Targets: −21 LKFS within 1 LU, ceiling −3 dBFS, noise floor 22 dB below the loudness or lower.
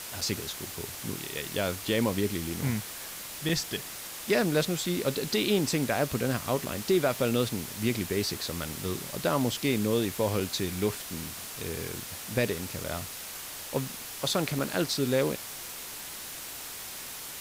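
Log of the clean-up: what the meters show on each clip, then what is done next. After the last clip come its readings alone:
number of dropouts 6; longest dropout 4.3 ms; background noise floor −41 dBFS; target noise floor −53 dBFS; integrated loudness −30.5 LKFS; sample peak −14.0 dBFS; target loudness −21.0 LKFS
→ repair the gap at 0:00.21/0:03.49/0:06.65/0:10.40/0:12.84/0:14.59, 4.3 ms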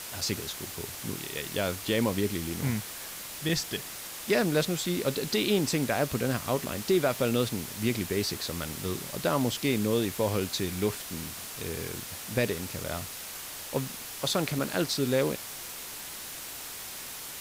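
number of dropouts 0; background noise floor −41 dBFS; target noise floor −53 dBFS
→ broadband denoise 12 dB, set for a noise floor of −41 dBFS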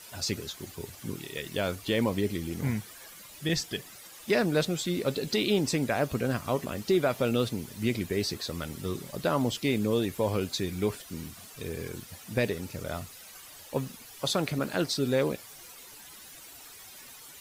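background noise floor −49 dBFS; target noise floor −53 dBFS
→ broadband denoise 6 dB, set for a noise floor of −49 dBFS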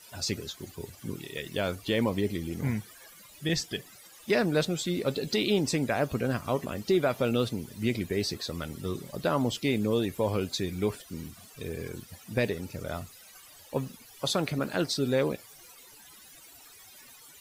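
background noise floor −53 dBFS; integrated loudness −30.5 LKFS; sample peak −14.5 dBFS; target loudness −21.0 LKFS
→ level +9.5 dB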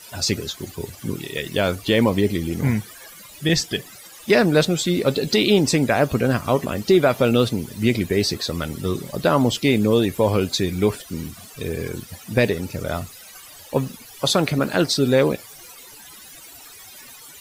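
integrated loudness −21.0 LKFS; sample peak −5.0 dBFS; background noise floor −43 dBFS

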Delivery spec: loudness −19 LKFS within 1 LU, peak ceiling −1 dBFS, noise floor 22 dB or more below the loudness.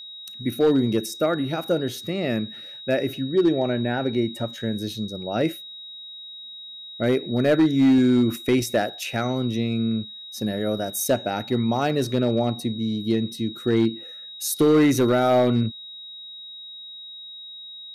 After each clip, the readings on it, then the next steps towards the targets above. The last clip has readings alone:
share of clipped samples 0.7%; peaks flattened at −12.5 dBFS; interfering tone 3,800 Hz; level of the tone −37 dBFS; integrated loudness −23.0 LKFS; sample peak −12.5 dBFS; target loudness −19.0 LKFS
→ clipped peaks rebuilt −12.5 dBFS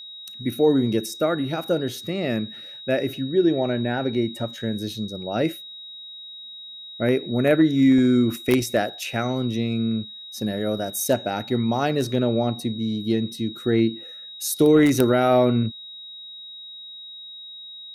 share of clipped samples 0.0%; interfering tone 3,800 Hz; level of the tone −37 dBFS
→ notch filter 3,800 Hz, Q 30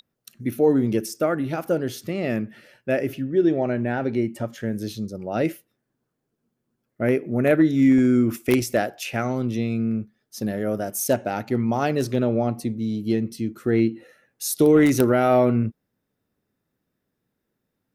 interfering tone none found; integrated loudness −22.5 LKFS; sample peak −3.5 dBFS; target loudness −19.0 LKFS
→ level +3.5 dB
brickwall limiter −1 dBFS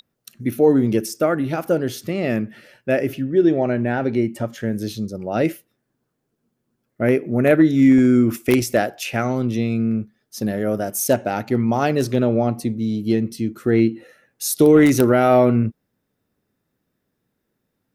integrated loudness −19.0 LKFS; sample peak −1.0 dBFS; background noise floor −75 dBFS

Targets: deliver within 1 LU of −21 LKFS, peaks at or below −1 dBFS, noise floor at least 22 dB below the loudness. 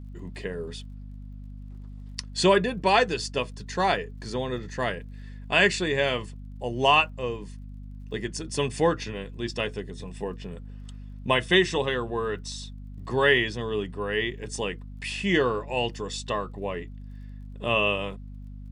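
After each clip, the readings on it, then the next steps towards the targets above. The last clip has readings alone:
crackle rate 32 per second; mains hum 50 Hz; hum harmonics up to 250 Hz; level of the hum −37 dBFS; integrated loudness −26.5 LKFS; sample peak −7.0 dBFS; target loudness −21.0 LKFS
→ click removal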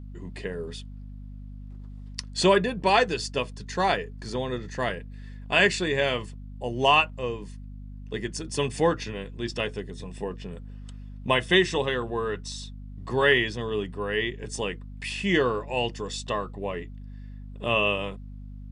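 crackle rate 0 per second; mains hum 50 Hz; hum harmonics up to 250 Hz; level of the hum −38 dBFS
→ hum removal 50 Hz, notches 5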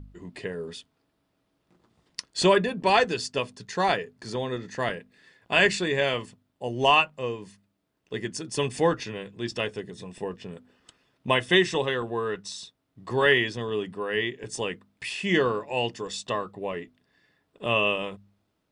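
mains hum none found; integrated loudness −26.5 LKFS; sample peak −7.0 dBFS; target loudness −21.0 LKFS
→ level +5.5 dB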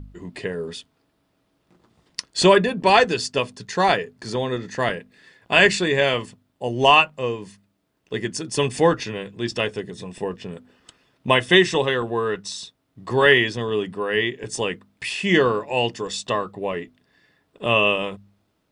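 integrated loudness −21.0 LKFS; sample peak −1.5 dBFS; background noise floor −70 dBFS

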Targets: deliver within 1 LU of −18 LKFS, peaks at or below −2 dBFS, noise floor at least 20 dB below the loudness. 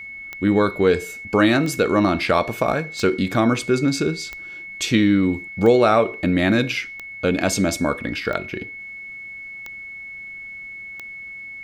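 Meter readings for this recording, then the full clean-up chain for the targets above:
number of clicks 9; interfering tone 2,200 Hz; level of the tone −33 dBFS; integrated loudness −20.0 LKFS; sample peak −3.0 dBFS; target loudness −18.0 LKFS
→ click removal
notch filter 2,200 Hz, Q 30
level +2 dB
brickwall limiter −2 dBFS

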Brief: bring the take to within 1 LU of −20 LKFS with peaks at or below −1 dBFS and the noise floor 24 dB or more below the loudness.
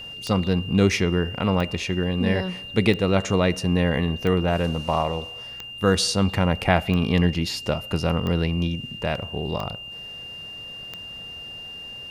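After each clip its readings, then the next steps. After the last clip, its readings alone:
number of clicks 9; interfering tone 2,800 Hz; level of the tone −35 dBFS; integrated loudness −23.0 LKFS; sample peak −3.5 dBFS; target loudness −20.0 LKFS
→ click removal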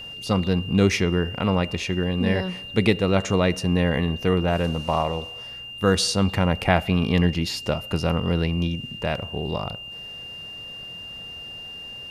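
number of clicks 0; interfering tone 2,800 Hz; level of the tone −35 dBFS
→ notch filter 2,800 Hz, Q 30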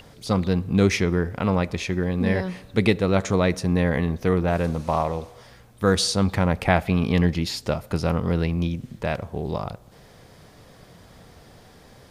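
interfering tone none found; integrated loudness −23.5 LKFS; sample peak −3.5 dBFS; target loudness −20.0 LKFS
→ level +3.5 dB
brickwall limiter −1 dBFS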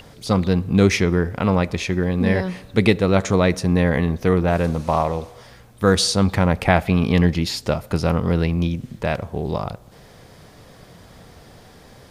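integrated loudness −20.0 LKFS; sample peak −1.0 dBFS; background noise floor −47 dBFS

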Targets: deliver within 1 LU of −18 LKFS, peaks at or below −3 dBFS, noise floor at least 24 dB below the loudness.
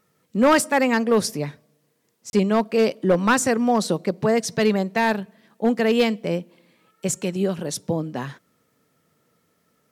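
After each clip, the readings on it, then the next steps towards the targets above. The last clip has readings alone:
share of clipped samples 0.5%; peaks flattened at −10.5 dBFS; number of dropouts 1; longest dropout 31 ms; integrated loudness −21.5 LKFS; sample peak −10.5 dBFS; target loudness −18.0 LKFS
→ clipped peaks rebuilt −10.5 dBFS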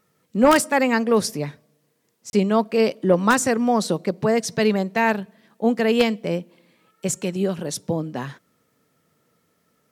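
share of clipped samples 0.0%; number of dropouts 1; longest dropout 31 ms
→ repair the gap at 0:02.30, 31 ms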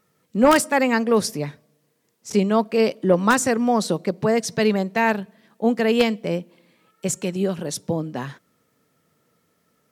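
number of dropouts 0; integrated loudness −21.5 LKFS; sample peak −1.5 dBFS; target loudness −18.0 LKFS
→ level +3.5 dB
brickwall limiter −3 dBFS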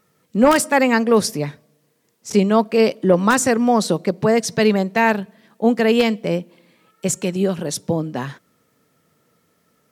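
integrated loudness −18.0 LKFS; sample peak −3.0 dBFS; background noise floor −64 dBFS

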